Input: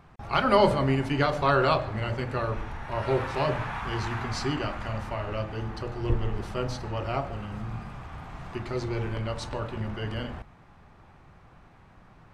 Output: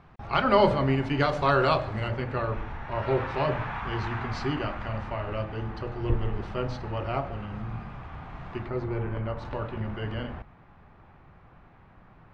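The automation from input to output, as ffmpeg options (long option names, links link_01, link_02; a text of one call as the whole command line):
ffmpeg -i in.wav -af "asetnsamples=nb_out_samples=441:pad=0,asendcmd='1.2 lowpass f 7400;2.08 lowpass f 3400;8.66 lowpass f 1800;9.45 lowpass f 2900',lowpass=4400" out.wav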